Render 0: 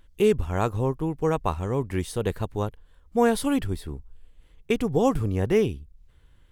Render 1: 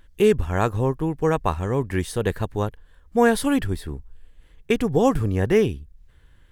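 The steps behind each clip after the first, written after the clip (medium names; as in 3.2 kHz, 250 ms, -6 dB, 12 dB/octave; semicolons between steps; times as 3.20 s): peaking EQ 1.7 kHz +6.5 dB 0.3 oct; trim +3 dB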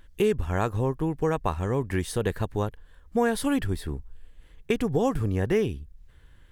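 compression 2:1, threshold -24 dBFS, peak gain reduction 7.5 dB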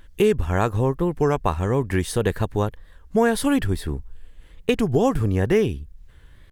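warped record 33 1/3 rpm, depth 160 cents; trim +5 dB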